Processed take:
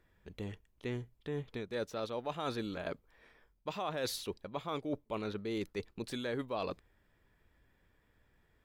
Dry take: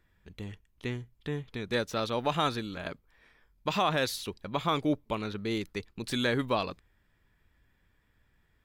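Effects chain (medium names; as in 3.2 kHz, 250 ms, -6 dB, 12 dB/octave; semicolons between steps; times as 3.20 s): peaking EQ 510 Hz +6.5 dB 1.7 oct; reverse; compression 6:1, threshold -32 dBFS, peak gain reduction 13 dB; reverse; trim -2.5 dB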